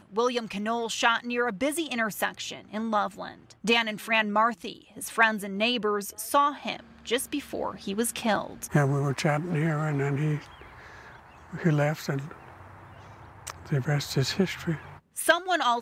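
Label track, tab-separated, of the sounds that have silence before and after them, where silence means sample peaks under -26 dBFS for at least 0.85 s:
11.640000	12.190000	sound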